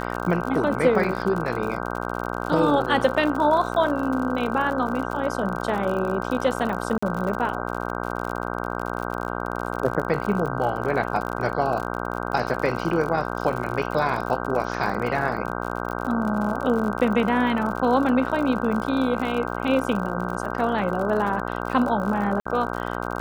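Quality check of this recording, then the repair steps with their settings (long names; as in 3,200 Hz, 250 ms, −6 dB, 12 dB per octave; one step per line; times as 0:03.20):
mains buzz 60 Hz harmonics 26 −29 dBFS
surface crackle 60 per second −29 dBFS
0:06.98–0:07.03: drop-out 45 ms
0:22.40–0:22.45: drop-out 55 ms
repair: click removal
hum removal 60 Hz, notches 26
repair the gap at 0:06.98, 45 ms
repair the gap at 0:22.40, 55 ms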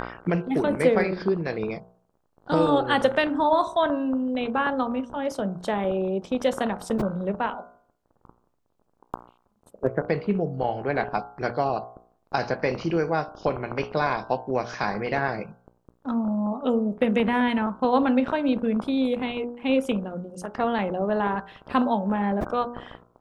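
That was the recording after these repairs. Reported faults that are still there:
none of them is left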